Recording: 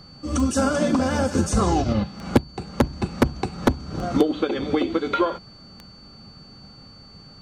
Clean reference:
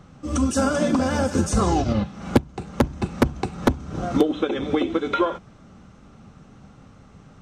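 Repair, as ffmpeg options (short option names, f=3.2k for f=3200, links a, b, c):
-af "adeclick=t=4,bandreject=f=4.5k:w=30"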